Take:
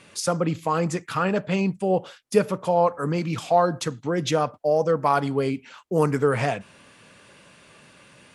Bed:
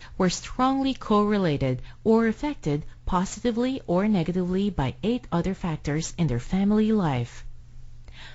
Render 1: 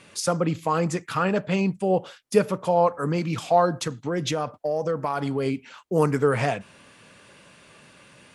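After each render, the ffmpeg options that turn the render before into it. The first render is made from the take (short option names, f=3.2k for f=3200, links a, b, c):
-filter_complex "[0:a]asettb=1/sr,asplit=3[a][b][c];[a]atrim=end=3.794[d];[b]atrim=start=3.79:end=5.46,asetpts=PTS-STARTPTS,afade=t=in:d=0.004:c=qsin,afade=t=out:st=1.666:d=0.004:c=qsin,acompressor=threshold=-21dB:ratio=6:attack=3.2:release=140:knee=1:detection=peak[e];[c]atrim=start=5.456[f];[d][e]acrossfade=d=0.004:c1=hsin:c2=qsin[g];[g][f]acrossfade=d=0.004:c1=qsin:c2=hsin"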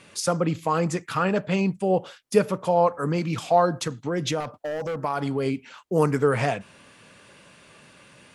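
-filter_complex "[0:a]asettb=1/sr,asplit=3[a][b][c];[a]atrim=end=4.404[d];[b]atrim=start=4.4:end=4.96,asetpts=PTS-STARTPTS,afade=t=in:d=0.004:c=qsin,afade=t=out:st=0.556:d=0.004:c=qsin,asoftclip=type=hard:threshold=-26dB[e];[c]atrim=start=4.956[f];[d][e]acrossfade=d=0.004:c1=hsin:c2=qsin[g];[g][f]acrossfade=d=0.004:c1=qsin:c2=hsin"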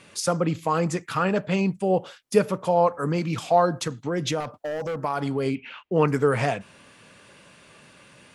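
-filter_complex "[0:a]asettb=1/sr,asplit=3[a][b][c];[a]atrim=end=5.554[d];[b]atrim=start=5.55:end=6.08,asetpts=PTS-STARTPTS,afade=t=in:d=0.004:c=qsin,afade=t=out:st=0.526:d=0.004:c=qsin,lowpass=f=2.7k:t=q:w=2.9[e];[c]atrim=start=6.076[f];[d][e]acrossfade=d=0.004:c1=hsin:c2=qsin[g];[g][f]acrossfade=d=0.004:c1=qsin:c2=hsin"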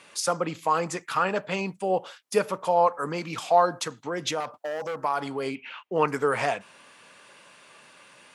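-af "highpass=f=560:p=1,equalizer=f=950:t=o:w=0.83:g=3.5"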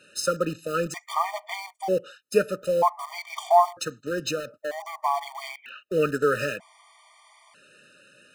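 -filter_complex "[0:a]asplit=2[a][b];[b]acrusher=bits=4:mix=0:aa=0.000001,volume=-9dB[c];[a][c]amix=inputs=2:normalize=0,afftfilt=real='re*gt(sin(2*PI*0.53*pts/sr)*(1-2*mod(floor(b*sr/1024/610),2)),0)':imag='im*gt(sin(2*PI*0.53*pts/sr)*(1-2*mod(floor(b*sr/1024/610),2)),0)':win_size=1024:overlap=0.75"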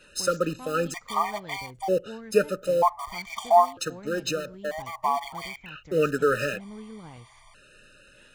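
-filter_complex "[1:a]volume=-20.5dB[a];[0:a][a]amix=inputs=2:normalize=0"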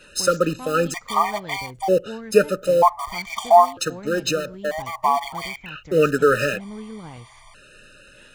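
-af "volume=6dB,alimiter=limit=-2dB:level=0:latency=1"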